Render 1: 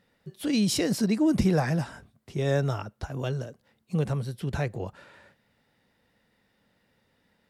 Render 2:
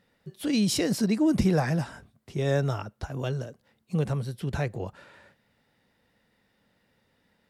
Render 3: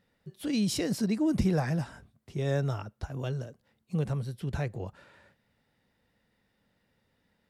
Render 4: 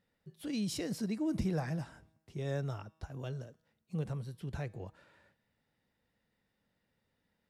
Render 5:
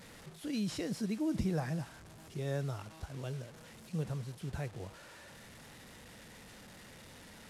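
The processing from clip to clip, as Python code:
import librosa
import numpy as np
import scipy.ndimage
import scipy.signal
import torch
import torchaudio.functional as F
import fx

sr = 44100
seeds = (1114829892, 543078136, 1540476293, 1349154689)

y1 = x
y2 = fx.low_shelf(y1, sr, hz=130.0, db=5.5)
y2 = y2 * librosa.db_to_amplitude(-5.0)
y3 = fx.comb_fb(y2, sr, f0_hz=160.0, decay_s=1.0, harmonics='all', damping=0.0, mix_pct=40)
y3 = y3 * librosa.db_to_amplitude(-3.0)
y4 = fx.delta_mod(y3, sr, bps=64000, step_db=-47.5)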